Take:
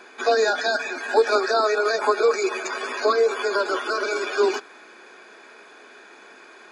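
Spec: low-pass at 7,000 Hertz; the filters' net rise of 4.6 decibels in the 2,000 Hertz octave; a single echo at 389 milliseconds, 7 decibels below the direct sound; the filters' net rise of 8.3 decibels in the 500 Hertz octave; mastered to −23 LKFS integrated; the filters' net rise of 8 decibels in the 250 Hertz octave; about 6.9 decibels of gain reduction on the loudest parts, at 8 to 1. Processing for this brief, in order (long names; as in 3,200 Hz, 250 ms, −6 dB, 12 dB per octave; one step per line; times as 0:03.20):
low-pass filter 7,000 Hz
parametric band 250 Hz +7.5 dB
parametric band 500 Hz +7.5 dB
parametric band 2,000 Hz +6 dB
downward compressor 8 to 1, threshold −12 dBFS
single-tap delay 389 ms −7 dB
level −5 dB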